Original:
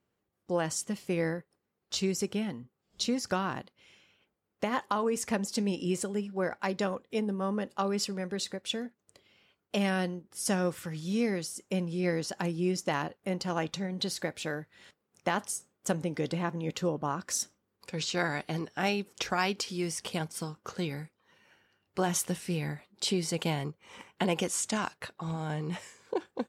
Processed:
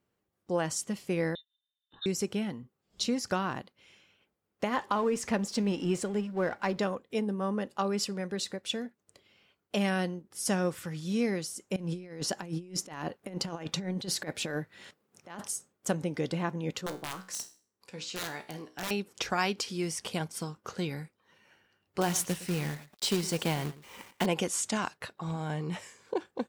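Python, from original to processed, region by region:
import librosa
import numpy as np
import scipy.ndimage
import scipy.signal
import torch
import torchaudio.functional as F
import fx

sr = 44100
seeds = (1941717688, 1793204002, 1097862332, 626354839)

y = fx.chain(x, sr, fx.vowel_filter(vowel='u'),
    fx.low_shelf(hz=290.0, db=10.5),
    fx.freq_invert(carrier_hz=3900), at=(1.35, 2.06))
y = fx.chain(y, sr, fx.law_mismatch(coded='mu'),
    fx.high_shelf(hz=8800.0, db=-11.5), at=(4.76, 6.83))
y = fx.chain(y, sr, fx.highpass(hz=190.0, slope=6),
    fx.low_shelf(hz=280.0, db=6.0),
    fx.over_compress(threshold_db=-35.0, ratio=-0.5), at=(11.76, 15.48))
y = fx.chain(y, sr, fx.low_shelf(hz=160.0, db=-5.0),
    fx.overflow_wrap(gain_db=21.5),
    fx.comb_fb(f0_hz=62.0, decay_s=0.39, harmonics='all', damping=0.0, mix_pct=70), at=(16.81, 18.91))
y = fx.chain(y, sr, fx.quant_companded(bits=4),
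    fx.echo_single(ms=113, db=-17.0), at=(22.01, 24.26))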